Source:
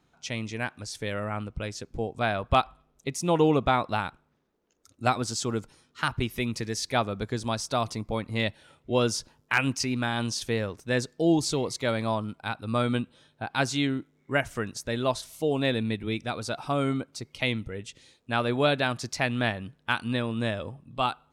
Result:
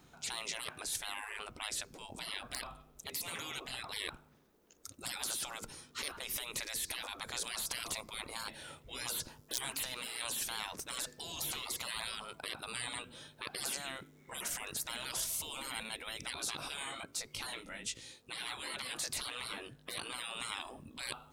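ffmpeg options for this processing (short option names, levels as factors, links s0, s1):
-filter_complex "[0:a]asettb=1/sr,asplit=3[s0][s1][s2];[s0]atrim=end=5.344[s3];[s1]atrim=start=5.34:end=7.02,asetpts=PTS-STARTPTS,afade=t=in:d=0.004:c=qsin,afade=t=out:st=1.676:d=0.004:c=qsin,acompressor=threshold=0.0178:ratio=1.5:attack=3.2:release=140:knee=1:detection=peak[s4];[s2]atrim=start=7.016[s5];[s3][s4]acrossfade=d=0.004:c1=hsin:c2=qsin[s6];[s6][s5]acrossfade=d=0.004:c1=qsin:c2=hsin,asettb=1/sr,asplit=3[s7][s8][s9];[s7]atrim=end=16.344[s10];[s8]atrim=start=16.34:end=20.1,asetpts=PTS-STARTPTS,afade=t=in:d=0.004:c=qsin,afade=t=out:st=3.756:d=0.004:c=qsin,flanger=delay=17:depth=2.8:speed=1.3[s11];[s9]atrim=start=20.096[s12];[s10][s11]acrossfade=d=0.004:c1=hsin:c2=qsin[s13];[s13][s12]acrossfade=d=0.004:c1=qsin:c2=hsin,afftfilt=real='re*lt(hypot(re,im),0.178)':imag='im*lt(hypot(re,im),0.178)':win_size=1024:overlap=0.75,highshelf=f=8100:g=11,afftfilt=real='re*lt(hypot(re,im),0.0224)':imag='im*lt(hypot(re,im),0.0224)':win_size=1024:overlap=0.75,volume=1.88"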